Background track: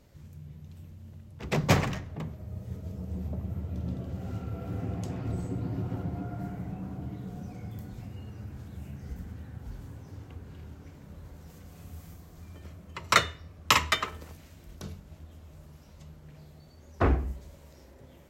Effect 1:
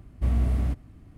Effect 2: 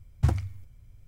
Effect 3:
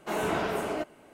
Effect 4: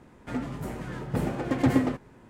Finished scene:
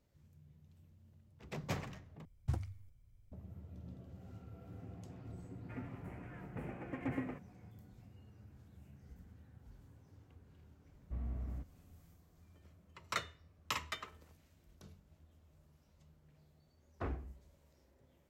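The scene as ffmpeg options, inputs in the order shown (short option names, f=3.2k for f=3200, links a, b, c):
-filter_complex "[0:a]volume=-16.5dB[a];[2:a]equalizer=f=1.9k:t=o:w=1.5:g=-2[b];[4:a]highshelf=f=3.1k:t=q:w=3:g=-8.5[c];[1:a]lowpass=1.9k[d];[a]asplit=2[e][f];[e]atrim=end=2.254[g];[b]atrim=end=1.07,asetpts=PTS-STARTPTS,volume=-13dB[h];[f]atrim=start=3.316[i];[c]atrim=end=2.29,asetpts=PTS-STARTPTS,volume=-17dB,afade=t=in:d=0.004:c=hsin,afade=t=out:st=2.286:d=0.004:c=hsin,adelay=5420[j];[d]atrim=end=1.17,asetpts=PTS-STARTPTS,volume=-17.5dB,afade=t=in:d=0.004:c=hsin,afade=t=out:st=1.166:d=0.004:c=hsin,adelay=10890[k];[g][h]acrossfade=d=0.004:c1=hsin:c2=hsin[l];[l][i]acrossfade=d=0.004:c1=hsin:c2=hsin[m];[m][j][k]amix=inputs=3:normalize=0"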